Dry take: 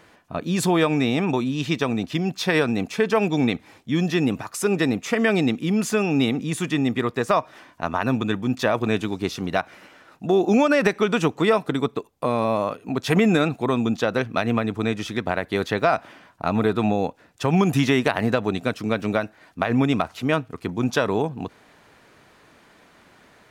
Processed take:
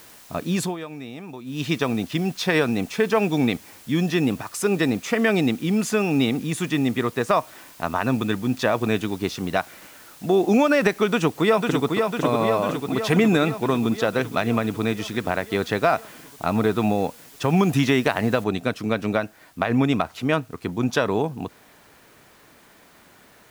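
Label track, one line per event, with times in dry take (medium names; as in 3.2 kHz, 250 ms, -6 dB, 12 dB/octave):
0.560000	1.640000	dip -15 dB, fades 0.20 s
11.070000	11.900000	echo throw 500 ms, feedback 70%, level -4 dB
18.440000	18.440000	noise floor step -48 dB -59 dB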